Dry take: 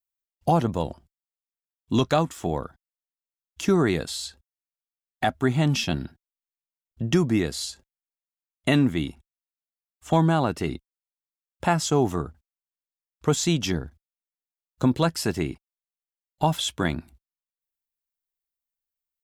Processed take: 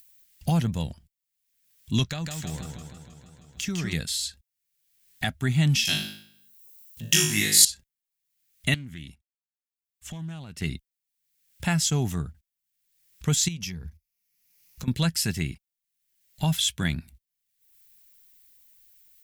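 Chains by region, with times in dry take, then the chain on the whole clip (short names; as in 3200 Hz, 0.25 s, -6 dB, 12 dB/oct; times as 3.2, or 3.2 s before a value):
2.05–3.93 bell 11000 Hz -12 dB 0.27 oct + compressor 2:1, threshold -30 dBFS + warbling echo 0.158 s, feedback 61%, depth 111 cents, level -4.5 dB
5.85–7.65 RIAA curve recording + flutter echo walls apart 3.3 m, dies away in 0.56 s
8.74–10.62 expander -41 dBFS + compressor 3:1, threshold -38 dBFS + Doppler distortion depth 0.14 ms
13.48–14.88 ripple EQ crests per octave 0.82, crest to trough 7 dB + compressor, threshold -32 dBFS
whole clip: high shelf 9200 Hz +6.5 dB; upward compressor, threshold -39 dBFS; band shelf 600 Hz -13.5 dB 2.6 oct; gain +2 dB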